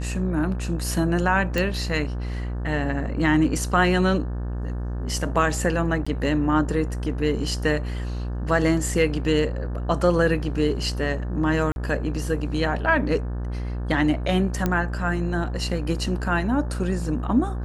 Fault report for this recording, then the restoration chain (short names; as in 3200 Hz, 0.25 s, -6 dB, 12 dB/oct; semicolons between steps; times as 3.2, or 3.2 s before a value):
buzz 60 Hz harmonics 30 -28 dBFS
1.58 pop
6.05–6.07 gap 15 ms
11.72–11.76 gap 41 ms
14.66 pop -10 dBFS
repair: de-click; de-hum 60 Hz, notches 30; interpolate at 6.05, 15 ms; interpolate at 11.72, 41 ms